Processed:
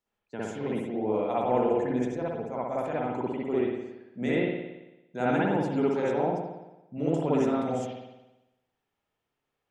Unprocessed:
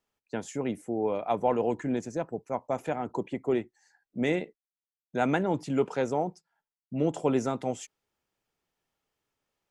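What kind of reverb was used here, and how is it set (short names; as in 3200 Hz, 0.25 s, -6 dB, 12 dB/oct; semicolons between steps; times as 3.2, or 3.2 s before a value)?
spring tank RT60 1 s, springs 56 ms, chirp 40 ms, DRR -7 dB; gain -6.5 dB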